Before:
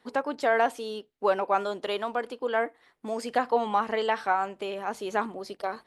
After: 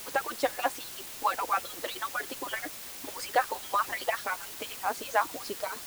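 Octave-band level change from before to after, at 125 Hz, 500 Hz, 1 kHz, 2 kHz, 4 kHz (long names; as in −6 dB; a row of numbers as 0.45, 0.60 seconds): can't be measured, −8.0 dB, −3.0 dB, −1.0 dB, +1.5 dB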